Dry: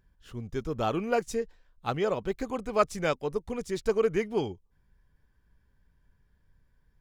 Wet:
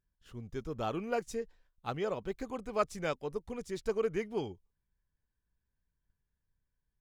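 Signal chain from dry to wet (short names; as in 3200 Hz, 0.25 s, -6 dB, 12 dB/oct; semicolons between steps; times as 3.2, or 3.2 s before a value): gate -57 dBFS, range -11 dB; gain -6.5 dB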